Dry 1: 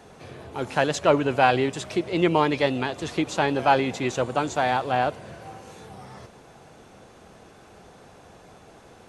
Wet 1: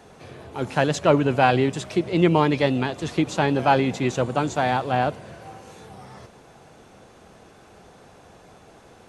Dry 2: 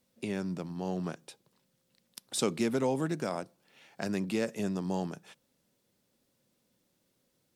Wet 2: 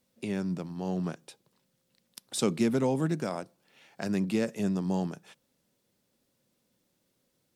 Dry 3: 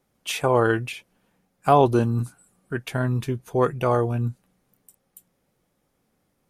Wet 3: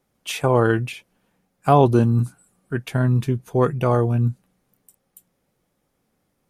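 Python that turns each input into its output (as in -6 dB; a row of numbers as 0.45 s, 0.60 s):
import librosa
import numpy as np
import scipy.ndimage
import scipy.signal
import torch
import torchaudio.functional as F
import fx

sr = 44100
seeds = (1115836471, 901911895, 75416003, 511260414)

y = fx.dynamic_eq(x, sr, hz=160.0, q=0.78, threshold_db=-37.0, ratio=4.0, max_db=7)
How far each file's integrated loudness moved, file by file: +2.0 LU, +2.5 LU, +3.0 LU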